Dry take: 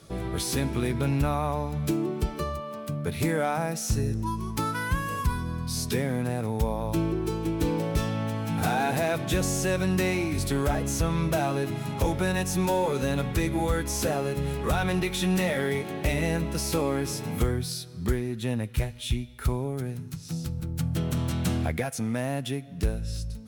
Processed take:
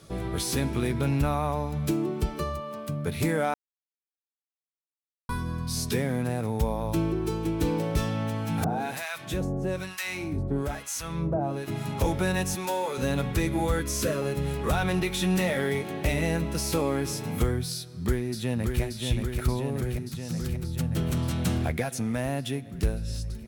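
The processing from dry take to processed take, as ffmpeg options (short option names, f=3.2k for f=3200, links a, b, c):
-filter_complex "[0:a]asettb=1/sr,asplit=3[a][b][c];[a]atrim=end=8.644[d];[b]atrim=start=8.64:end=11.68,asetpts=PTS-STARTPTS,afade=t=in:d=0.004:c=qsin,afade=t=out:st=3.036:d=0.004:c=qsin,acrossover=split=980[e][f];[e]aeval=exprs='val(0)*(1-1/2+1/2*cos(2*PI*1.1*n/s))':c=same[g];[f]aeval=exprs='val(0)*(1-1/2-1/2*cos(2*PI*1.1*n/s))':c=same[h];[g][h]amix=inputs=2:normalize=0[i];[c]atrim=start=11.676[j];[d][i]acrossfade=d=0.004:c1=hsin:c2=qsin[k];[k][j]acrossfade=d=0.004:c1=qsin:c2=hsin,asettb=1/sr,asplit=3[l][m][n];[l]atrim=end=12.554[o];[m]atrim=start=12.55:end=12.98,asetpts=PTS-STARTPTS,afade=t=in:d=0.004:c=qsin,afade=t=out:st=0.426:d=0.004:c=qsin,highpass=f=680:p=1[p];[n]atrim=start=12.976[q];[o][p]acrossfade=d=0.004:c1=hsin:c2=qsin[r];[r][q]acrossfade=d=0.004:c1=qsin:c2=hsin,asettb=1/sr,asplit=3[s][t][u];[s]atrim=end=13.794[v];[t]atrim=start=13.79:end=14.22,asetpts=PTS-STARTPTS,afade=t=in:d=0.004:c=qsin,afade=t=out:st=0.426:d=0.004:c=qsin,asuperstop=centerf=780:order=12:qfactor=3.3[w];[u]atrim=start=14.216[x];[v][w]acrossfade=d=0.004:c1=hsin:c2=qsin[y];[y][x]acrossfade=d=0.004:c1=qsin:c2=hsin,asplit=2[z][aa];[aa]afade=t=in:st=17.74:d=0.01,afade=t=out:st=18.82:d=0.01,aecho=0:1:580|1160|1740|2320|2900|3480|4060|4640|5220|5800|6380|6960:0.595662|0.446747|0.33506|0.251295|0.188471|0.141353|0.106015|0.0795113|0.0596335|0.0447251|0.0335438|0.0251579[ab];[z][ab]amix=inputs=2:normalize=0,asplit=3[ac][ad][ae];[ac]atrim=end=3.54,asetpts=PTS-STARTPTS,afade=t=out:st=3.536:d=0.004:c=hsin[af];[ad]atrim=start=3.54:end=5.29,asetpts=PTS-STARTPTS,volume=0[ag];[ae]atrim=start=5.29,asetpts=PTS-STARTPTS,afade=t=in:d=0.004:c=hsin[ah];[af][ag][ah]concat=n=3:v=0:a=1"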